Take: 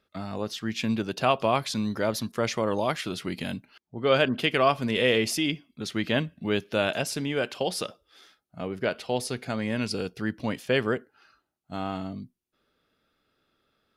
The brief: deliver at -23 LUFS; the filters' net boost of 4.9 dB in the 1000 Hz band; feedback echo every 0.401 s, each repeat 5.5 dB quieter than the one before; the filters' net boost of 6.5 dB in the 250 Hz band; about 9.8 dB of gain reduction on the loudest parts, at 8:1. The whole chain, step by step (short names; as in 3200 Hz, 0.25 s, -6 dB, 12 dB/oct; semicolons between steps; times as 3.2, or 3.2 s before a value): bell 250 Hz +7.5 dB; bell 1000 Hz +6 dB; compressor 8:1, threshold -23 dBFS; feedback echo 0.401 s, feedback 53%, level -5.5 dB; gain +5.5 dB